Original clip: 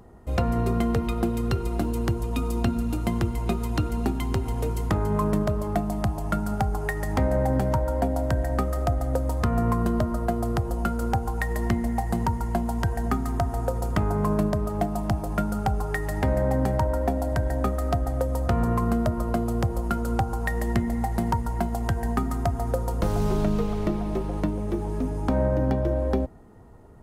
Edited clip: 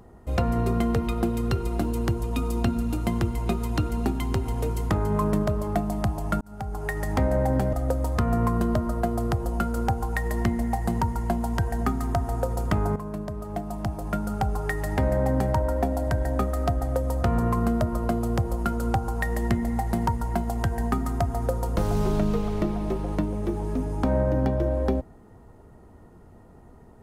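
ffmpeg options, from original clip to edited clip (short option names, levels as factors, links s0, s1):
-filter_complex "[0:a]asplit=4[s0][s1][s2][s3];[s0]atrim=end=6.41,asetpts=PTS-STARTPTS,afade=t=out:st=6.406:d=0.004:c=hsin[s4];[s1]atrim=start=6.41:end=7.732,asetpts=PTS-STARTPTS,afade=t=in:d=0.57[s5];[s2]atrim=start=8.978:end=14.21,asetpts=PTS-STARTPTS,afade=t=out:st=5.228:d=0.004:c=hsin:silence=0.251189[s6];[s3]atrim=start=14.21,asetpts=PTS-STARTPTS,afade=t=in:d=1.7:silence=0.251189[s7];[s4][s5]concat=n=2:v=0:a=1[s8];[s6][s7]concat=n=2:v=0:a=1[s9];[s8][s9]acrossfade=d=0.004:c1=hsin:c2=hsin"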